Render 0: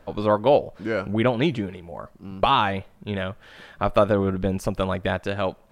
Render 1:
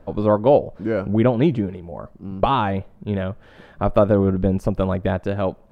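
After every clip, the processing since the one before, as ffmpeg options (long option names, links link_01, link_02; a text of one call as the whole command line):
ffmpeg -i in.wav -af "tiltshelf=frequency=1100:gain=7,volume=-1dB" out.wav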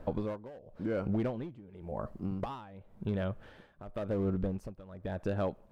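ffmpeg -i in.wav -filter_complex "[0:a]asplit=2[link_01][link_02];[link_02]aeval=exprs='0.178*(abs(mod(val(0)/0.178+3,4)-2)-1)':channel_layout=same,volume=-6.5dB[link_03];[link_01][link_03]amix=inputs=2:normalize=0,acompressor=threshold=-25dB:ratio=5,tremolo=f=0.93:d=0.89,volume=-4dB" out.wav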